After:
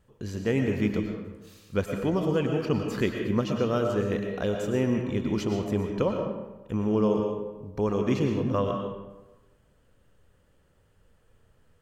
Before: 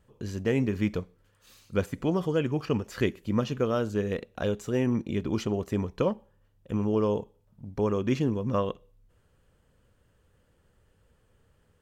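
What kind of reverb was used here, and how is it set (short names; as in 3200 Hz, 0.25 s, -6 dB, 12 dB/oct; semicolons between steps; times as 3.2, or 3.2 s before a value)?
digital reverb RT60 1.1 s, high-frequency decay 0.6×, pre-delay 75 ms, DRR 3 dB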